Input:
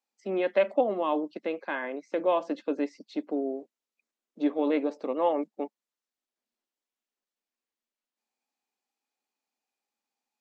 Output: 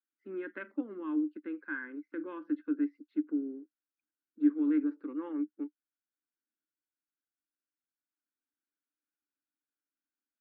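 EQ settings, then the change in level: double band-pass 670 Hz, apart 2.3 oct; air absorption 220 m; +2.5 dB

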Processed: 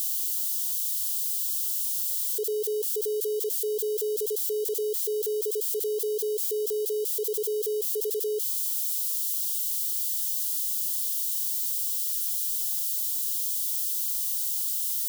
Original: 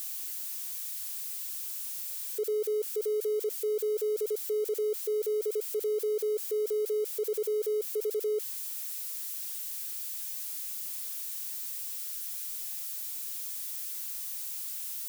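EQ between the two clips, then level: brick-wall FIR band-stop 520–2800 Hz; tilt shelf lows -4.5 dB, about 1300 Hz; +4.5 dB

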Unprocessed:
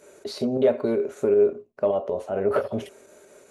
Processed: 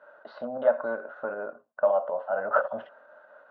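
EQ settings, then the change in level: air absorption 200 m; speaker cabinet 490–2800 Hz, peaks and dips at 550 Hz +4 dB, 1500 Hz +10 dB, 2200 Hz +5 dB; fixed phaser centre 950 Hz, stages 4; +4.0 dB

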